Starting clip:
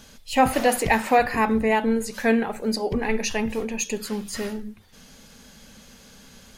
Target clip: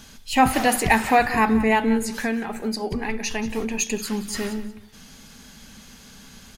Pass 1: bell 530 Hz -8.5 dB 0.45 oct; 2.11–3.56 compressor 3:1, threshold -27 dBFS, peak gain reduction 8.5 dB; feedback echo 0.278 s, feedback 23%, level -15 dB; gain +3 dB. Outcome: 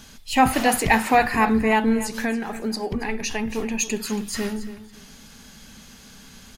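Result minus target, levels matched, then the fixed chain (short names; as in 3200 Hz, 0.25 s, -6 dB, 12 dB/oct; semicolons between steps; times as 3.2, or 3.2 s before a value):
echo 97 ms late
bell 530 Hz -8.5 dB 0.45 oct; 2.11–3.56 compressor 3:1, threshold -27 dBFS, peak gain reduction 8.5 dB; feedback echo 0.181 s, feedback 23%, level -15 dB; gain +3 dB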